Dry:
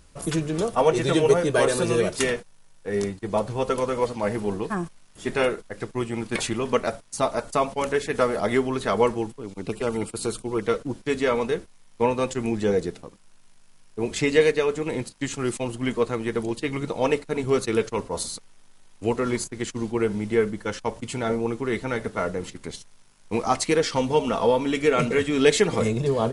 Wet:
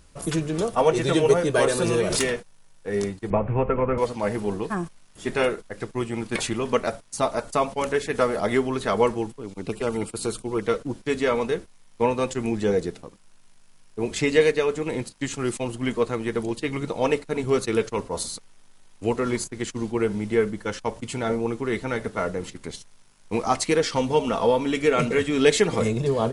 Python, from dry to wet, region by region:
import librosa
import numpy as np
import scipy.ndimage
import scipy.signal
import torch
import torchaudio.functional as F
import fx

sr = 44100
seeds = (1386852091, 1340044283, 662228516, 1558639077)

y = fx.chain(x, sr, fx.tube_stage(drive_db=12.0, bias=0.25),
    fx.pre_swell(db_per_s=27.0), at=(1.84, 2.34))
y = fx.chain(y, sr, fx.ellip_lowpass(hz=2500.0, order=4, stop_db=50),
    fx.low_shelf(hz=140.0, db=12.0),
    fx.band_squash(depth_pct=100), at=(3.3, 3.98))